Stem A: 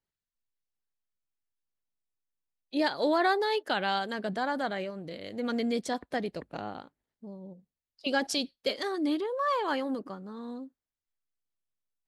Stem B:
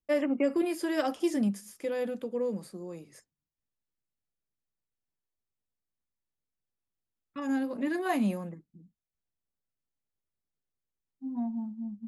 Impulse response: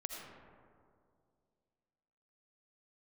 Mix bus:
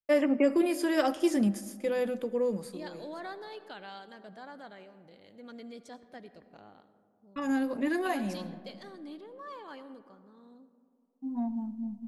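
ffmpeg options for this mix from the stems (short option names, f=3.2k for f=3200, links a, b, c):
-filter_complex "[0:a]volume=-18.5dB,asplit=3[a][b][c];[b]volume=-6dB[d];[1:a]agate=range=-33dB:threshold=-47dB:ratio=3:detection=peak,asubboost=boost=4:cutoff=78,volume=1.5dB,asplit=2[e][f];[f]volume=-12.5dB[g];[c]apad=whole_len=532668[h];[e][h]sidechaincompress=threshold=-49dB:ratio=8:attack=16:release=817[i];[2:a]atrim=start_sample=2205[j];[d][g]amix=inputs=2:normalize=0[k];[k][j]afir=irnorm=-1:irlink=0[l];[a][i][l]amix=inputs=3:normalize=0"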